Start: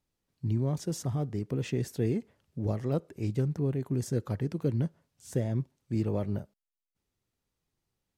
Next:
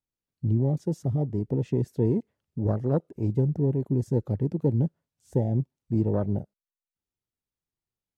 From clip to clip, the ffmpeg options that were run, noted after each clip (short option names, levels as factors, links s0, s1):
-af "afwtdn=0.0158,volume=1.78"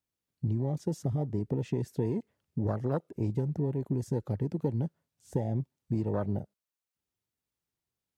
-filter_complex "[0:a]highpass=52,acrossover=split=820[s0][s1];[s0]acompressor=threshold=0.0316:ratio=6[s2];[s2][s1]amix=inputs=2:normalize=0,volume=1.33"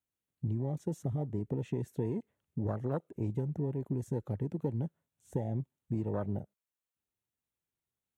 -af "equalizer=f=4900:w=3.9:g=-13,volume=0.668"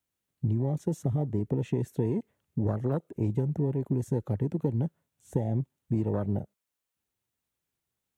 -filter_complex "[0:a]acrossover=split=420|3000[s0][s1][s2];[s1]acompressor=threshold=0.01:ratio=6[s3];[s0][s3][s2]amix=inputs=3:normalize=0,volume=2"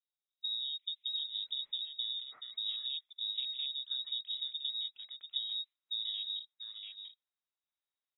-filter_complex "[0:a]lowpass=f=3300:t=q:w=0.5098,lowpass=f=3300:t=q:w=0.6013,lowpass=f=3300:t=q:w=0.9,lowpass=f=3300:t=q:w=2.563,afreqshift=-3900,acrossover=split=2900[s0][s1];[s0]adelay=690[s2];[s2][s1]amix=inputs=2:normalize=0,volume=0.398"